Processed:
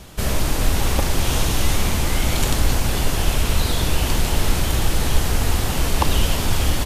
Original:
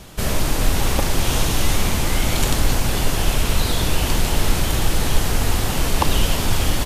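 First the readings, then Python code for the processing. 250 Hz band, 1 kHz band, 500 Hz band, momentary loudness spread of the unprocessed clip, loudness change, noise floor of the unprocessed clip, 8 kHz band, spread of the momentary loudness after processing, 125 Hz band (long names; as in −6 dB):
−1.0 dB, −1.0 dB, −1.0 dB, 1 LU, −0.5 dB, −22 dBFS, −1.0 dB, 1 LU, +0.5 dB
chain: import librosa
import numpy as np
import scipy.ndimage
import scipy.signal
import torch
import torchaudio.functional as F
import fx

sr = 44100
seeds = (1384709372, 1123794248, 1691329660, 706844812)

y = fx.peak_eq(x, sr, hz=67.0, db=5.0, octaves=0.41)
y = F.gain(torch.from_numpy(y), -1.0).numpy()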